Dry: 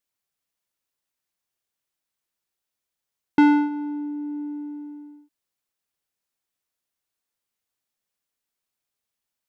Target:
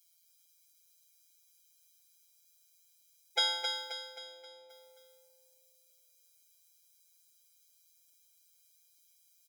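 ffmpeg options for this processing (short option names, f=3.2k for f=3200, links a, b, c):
-filter_complex "[0:a]asettb=1/sr,asplit=3[a][b][c];[a]atrim=end=3.924[d];[b]atrim=start=3.92:end=4.7,asetpts=PTS-STARTPTS,afade=t=in:d=0.004:c=qsin,afade=t=out:st=0.776:d=0.004:c=qsin,lowpass=2.8k[e];[c]atrim=start=4.696[f];[d][e]acrossfade=d=0.004:c1=hsin:c2=qsin[g];[g][f]acrossfade=d=0.004:c1=qsin:c2=hsin,afftfilt=real='hypot(re,im)*cos(PI*b)':imag='0':win_size=1024:overlap=0.75,acrossover=split=290|1700[h][i][j];[j]aexciter=amount=6.6:drive=2.7:freq=2.2k[k];[h][i][k]amix=inputs=3:normalize=0,aecho=1:1:265|530|795|1060|1325|1590:0.501|0.236|0.111|0.052|0.0245|0.0115,afftfilt=real='re*eq(mod(floor(b*sr/1024/420),2),1)':imag='im*eq(mod(floor(b*sr/1024/420),2),1)':win_size=1024:overlap=0.75,volume=4.5dB"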